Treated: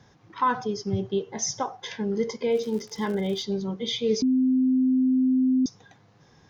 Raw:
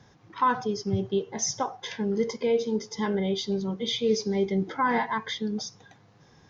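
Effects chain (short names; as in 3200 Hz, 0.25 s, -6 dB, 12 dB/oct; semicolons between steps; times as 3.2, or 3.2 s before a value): 2.51–3.41 crackle 190/s -36 dBFS; 4.22–5.66 bleep 258 Hz -18 dBFS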